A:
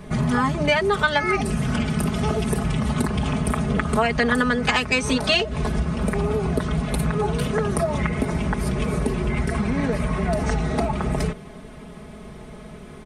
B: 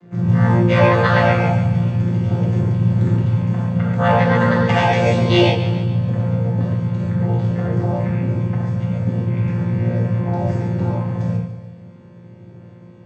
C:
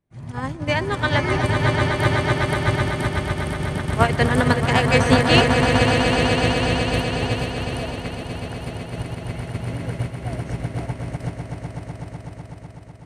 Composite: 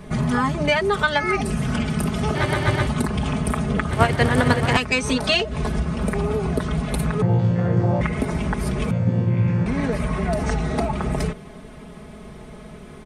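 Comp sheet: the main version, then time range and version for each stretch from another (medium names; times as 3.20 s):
A
2.35–2.87 s: from C
3.91–4.77 s: from C
7.22–8.01 s: from B
8.91–9.66 s: from B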